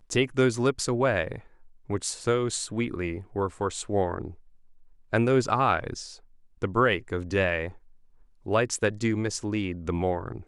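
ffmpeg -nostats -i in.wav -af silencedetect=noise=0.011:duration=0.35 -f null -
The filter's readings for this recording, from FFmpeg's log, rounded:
silence_start: 1.39
silence_end: 1.90 | silence_duration: 0.50
silence_start: 4.33
silence_end: 5.13 | silence_duration: 0.80
silence_start: 6.15
silence_end: 6.62 | silence_duration: 0.47
silence_start: 7.72
silence_end: 8.46 | silence_duration: 0.74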